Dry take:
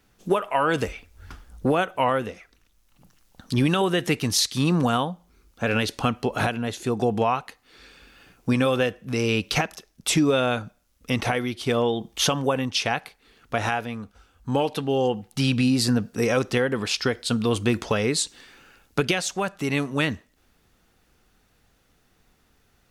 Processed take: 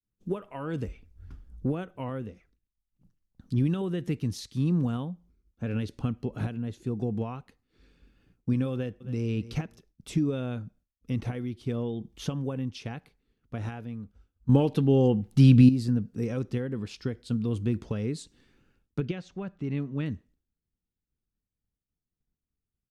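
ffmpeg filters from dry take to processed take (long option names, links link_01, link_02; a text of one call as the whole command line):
ffmpeg -i in.wav -filter_complex "[0:a]asplit=2[link_01][link_02];[link_02]afade=type=in:start_time=8.73:duration=0.01,afade=type=out:start_time=9.26:duration=0.01,aecho=0:1:270|540:0.177828|0.0266742[link_03];[link_01][link_03]amix=inputs=2:normalize=0,asettb=1/sr,asplit=3[link_04][link_05][link_06];[link_04]atrim=end=19.004[link_07];[link_05]atrim=start=19:end=20.06,asetpts=PTS-STARTPTS,afade=type=in:duration=0.004:curve=qsin,afade=type=out:start_time=1.056:duration=0.004:curve=qsin,lowpass=3900[link_08];[link_06]atrim=start=20.056[link_09];[link_07][link_08]acrossfade=duration=0.004:curve1=hsin:curve2=qsin[link_10];[link_10][link_09]acrossfade=duration=0.004:curve1=qsin:curve2=hsin,asplit=3[link_11][link_12][link_13];[link_11]atrim=end=14.492[link_14];[link_12]atrim=start=14.488:end=15.692,asetpts=PTS-STARTPTS,volume=10dB[link_15];[link_13]atrim=start=15.688[link_16];[link_14][link_15]acrossfade=duration=0.004:curve1=hsin:curve2=hsin[link_17];[link_17][link_16]acrossfade=duration=0.004:curve1=hsin:curve2=hsin,agate=range=-33dB:threshold=-49dB:ratio=3:detection=peak,firequalizer=gain_entry='entry(130,0);entry(690,-17);entry(11000,-20)':delay=0.05:min_phase=1,volume=-1.5dB" out.wav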